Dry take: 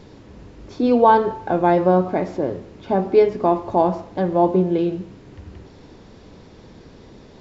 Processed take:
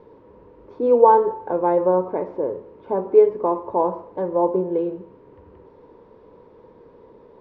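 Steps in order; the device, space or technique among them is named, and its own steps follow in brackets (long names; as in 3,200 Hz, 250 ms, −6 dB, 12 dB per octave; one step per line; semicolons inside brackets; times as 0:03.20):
inside a cardboard box (low-pass filter 2,600 Hz 12 dB per octave; hollow resonant body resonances 480/940 Hz, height 18 dB, ringing for 20 ms)
level −14 dB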